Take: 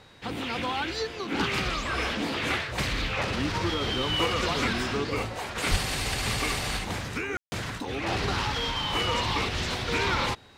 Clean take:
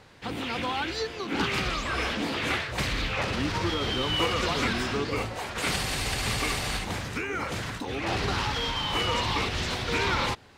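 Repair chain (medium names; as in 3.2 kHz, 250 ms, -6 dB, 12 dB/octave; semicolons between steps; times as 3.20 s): band-stop 3.8 kHz, Q 30; de-plosive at 5.70 s; room tone fill 7.37–7.52 s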